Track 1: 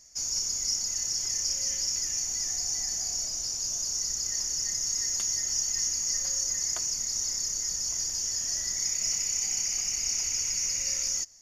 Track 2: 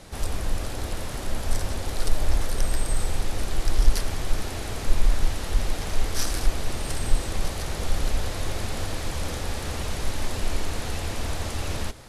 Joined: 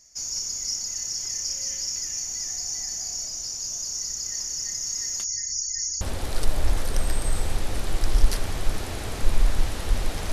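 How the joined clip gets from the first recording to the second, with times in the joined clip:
track 1
5.24–6.01 s: spectral gate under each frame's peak -25 dB strong
6.01 s: go over to track 2 from 1.65 s

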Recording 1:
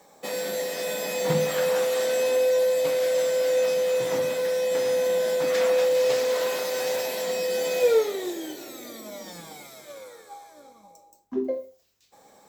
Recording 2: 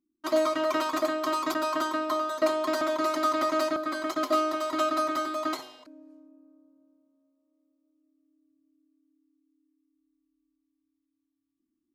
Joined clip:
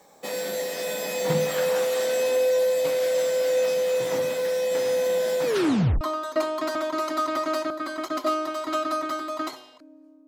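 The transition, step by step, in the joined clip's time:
recording 1
5.45 s: tape stop 0.56 s
6.01 s: go over to recording 2 from 2.07 s

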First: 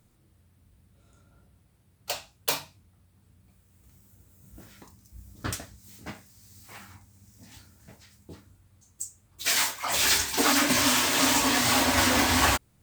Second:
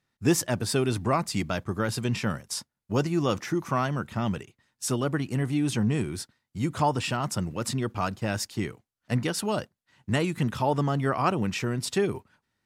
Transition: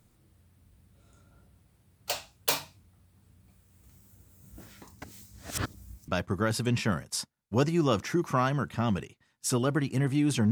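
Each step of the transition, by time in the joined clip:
first
5.02–6.08 s: reverse
6.08 s: go over to second from 1.46 s

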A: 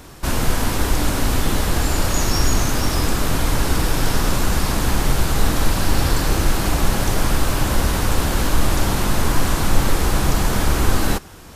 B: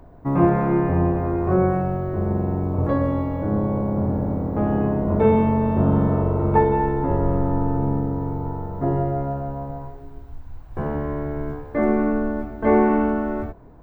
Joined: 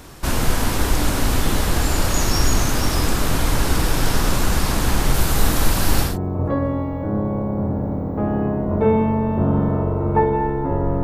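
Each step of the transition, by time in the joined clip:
A
5.14–6.18 s: treble shelf 11 kHz +8 dB
6.09 s: go over to B from 2.48 s, crossfade 0.18 s

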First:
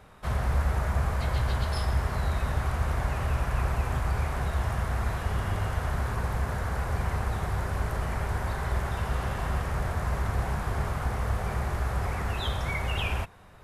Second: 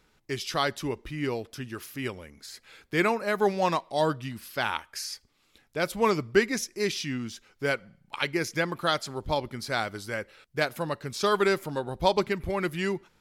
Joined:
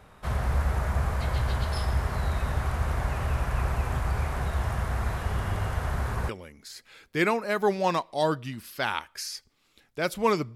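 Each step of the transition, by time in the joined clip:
first
6.29 s: go over to second from 2.07 s

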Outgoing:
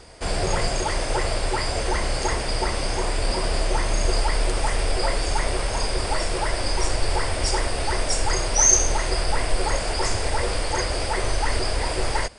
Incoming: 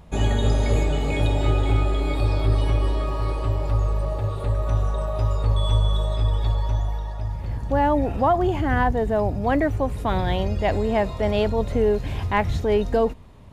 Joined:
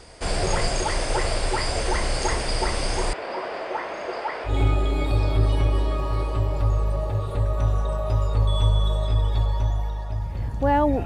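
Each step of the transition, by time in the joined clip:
outgoing
3.13–4.54 s: band-pass 420–2000 Hz
4.49 s: go over to incoming from 1.58 s, crossfade 0.10 s

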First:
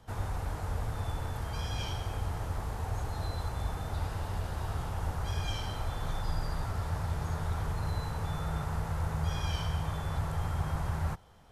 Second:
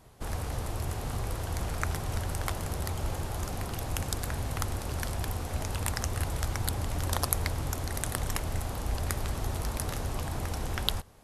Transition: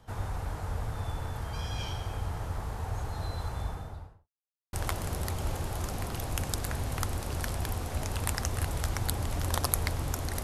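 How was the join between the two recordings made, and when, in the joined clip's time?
first
3.54–4.29 s: studio fade out
4.29–4.73 s: mute
4.73 s: go over to second from 2.32 s

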